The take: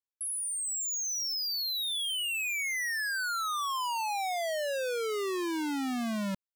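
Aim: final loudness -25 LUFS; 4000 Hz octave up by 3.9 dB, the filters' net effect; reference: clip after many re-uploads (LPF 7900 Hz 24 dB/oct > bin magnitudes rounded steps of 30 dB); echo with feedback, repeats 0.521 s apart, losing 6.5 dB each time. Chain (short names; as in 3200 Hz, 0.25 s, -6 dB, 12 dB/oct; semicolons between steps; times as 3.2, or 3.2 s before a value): LPF 7900 Hz 24 dB/oct; bell 4000 Hz +5 dB; feedback echo 0.521 s, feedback 47%, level -6.5 dB; bin magnitudes rounded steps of 30 dB; gain +3.5 dB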